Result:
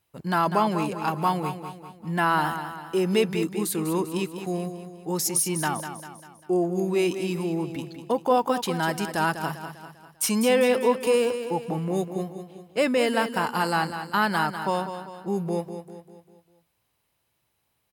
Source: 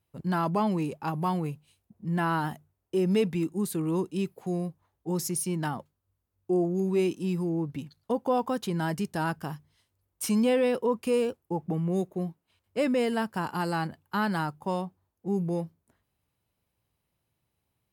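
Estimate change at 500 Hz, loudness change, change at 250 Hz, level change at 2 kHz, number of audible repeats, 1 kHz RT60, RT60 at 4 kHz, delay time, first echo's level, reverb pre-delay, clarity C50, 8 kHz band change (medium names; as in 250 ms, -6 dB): +4.0 dB, +3.5 dB, +1.0 dB, +8.0 dB, 5, no reverb, no reverb, 198 ms, -9.5 dB, no reverb, no reverb, +8.5 dB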